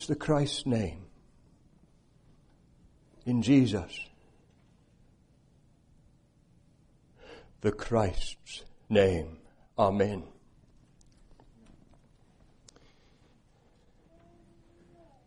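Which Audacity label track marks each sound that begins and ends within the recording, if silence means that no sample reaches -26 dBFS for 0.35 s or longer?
3.280000	3.790000	sound
7.650000	8.270000	sound
8.920000	9.210000	sound
9.790000	10.140000	sound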